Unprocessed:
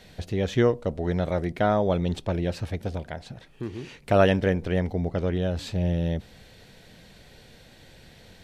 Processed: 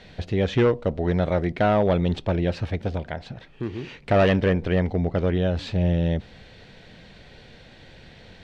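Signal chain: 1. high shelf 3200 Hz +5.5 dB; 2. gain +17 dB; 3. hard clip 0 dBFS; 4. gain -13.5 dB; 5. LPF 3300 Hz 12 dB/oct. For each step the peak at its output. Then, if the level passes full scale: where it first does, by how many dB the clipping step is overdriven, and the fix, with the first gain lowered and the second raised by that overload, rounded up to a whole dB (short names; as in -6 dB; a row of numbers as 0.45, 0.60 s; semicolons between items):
-7.0, +10.0, 0.0, -13.5, -13.0 dBFS; step 2, 10.0 dB; step 2 +7 dB, step 4 -3.5 dB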